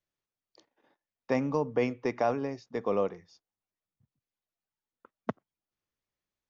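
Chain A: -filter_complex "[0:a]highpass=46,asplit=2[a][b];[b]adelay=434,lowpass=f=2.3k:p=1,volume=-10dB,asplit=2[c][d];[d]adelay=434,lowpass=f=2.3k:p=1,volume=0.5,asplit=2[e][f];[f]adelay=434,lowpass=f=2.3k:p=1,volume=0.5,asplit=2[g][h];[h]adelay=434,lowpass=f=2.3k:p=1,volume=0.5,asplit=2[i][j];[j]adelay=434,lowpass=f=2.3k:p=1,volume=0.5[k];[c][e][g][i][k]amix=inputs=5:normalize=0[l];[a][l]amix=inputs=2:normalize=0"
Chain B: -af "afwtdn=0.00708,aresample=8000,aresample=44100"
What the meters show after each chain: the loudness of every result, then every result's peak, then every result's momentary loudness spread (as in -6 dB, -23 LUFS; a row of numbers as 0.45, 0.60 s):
-32.0, -31.5 LUFS; -15.0, -15.0 dBFS; 21, 11 LU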